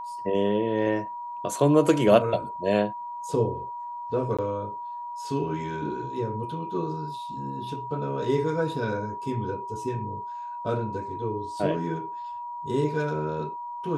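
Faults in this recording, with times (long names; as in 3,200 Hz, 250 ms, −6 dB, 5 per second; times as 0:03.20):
whistle 960 Hz −33 dBFS
0:04.37–0:04.39: drop-out 16 ms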